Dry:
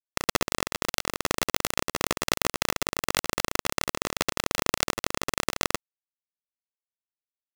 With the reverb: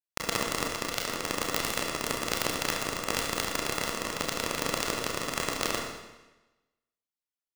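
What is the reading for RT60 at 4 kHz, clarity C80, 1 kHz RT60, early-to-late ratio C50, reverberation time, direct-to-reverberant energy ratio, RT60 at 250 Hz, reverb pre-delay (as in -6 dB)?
1.0 s, 5.5 dB, 1.1 s, 3.5 dB, 1.1 s, 0.0 dB, 1.1 s, 26 ms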